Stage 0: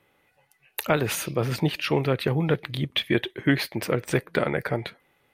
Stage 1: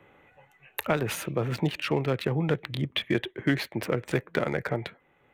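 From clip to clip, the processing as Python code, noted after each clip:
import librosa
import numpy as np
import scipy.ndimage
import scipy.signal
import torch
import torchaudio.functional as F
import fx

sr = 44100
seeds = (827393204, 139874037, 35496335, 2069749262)

y = fx.wiener(x, sr, points=9)
y = fx.band_squash(y, sr, depth_pct=40)
y = F.gain(torch.from_numpy(y), -3.0).numpy()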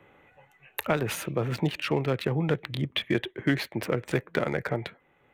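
y = x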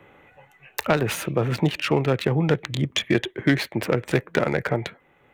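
y = fx.self_delay(x, sr, depth_ms=0.066)
y = F.gain(torch.from_numpy(y), 5.5).numpy()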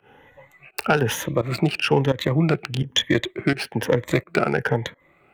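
y = fx.spec_ripple(x, sr, per_octave=1.1, drift_hz=1.1, depth_db=12)
y = fx.volume_shaper(y, sr, bpm=85, per_beat=1, depth_db=-19, release_ms=128.0, shape='fast start')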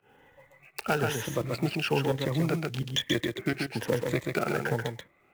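y = fx.block_float(x, sr, bits=5)
y = y + 10.0 ** (-4.5 / 20.0) * np.pad(y, (int(134 * sr / 1000.0), 0))[:len(y)]
y = F.gain(torch.from_numpy(y), -8.5).numpy()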